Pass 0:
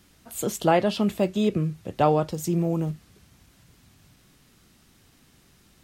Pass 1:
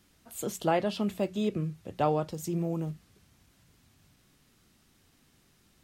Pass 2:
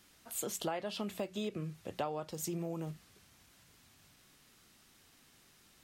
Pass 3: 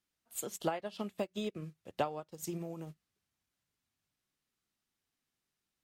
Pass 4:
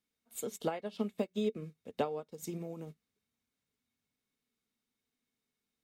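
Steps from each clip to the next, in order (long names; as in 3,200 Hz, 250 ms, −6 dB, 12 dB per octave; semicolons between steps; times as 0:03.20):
mains-hum notches 60/120/180 Hz; level −6.5 dB
low-shelf EQ 390 Hz −9.5 dB; downward compressor 6 to 1, threshold −38 dBFS, peak gain reduction 13.5 dB; level +3.5 dB
expander for the loud parts 2.5 to 1, over −52 dBFS; level +5.5 dB
hollow resonant body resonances 240/440/2,200/3,700 Hz, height 12 dB, ringing for 60 ms; level −3 dB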